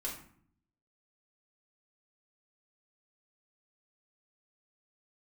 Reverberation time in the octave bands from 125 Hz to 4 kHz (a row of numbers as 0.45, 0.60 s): 0.90, 0.85, 0.60, 0.55, 0.50, 0.35 s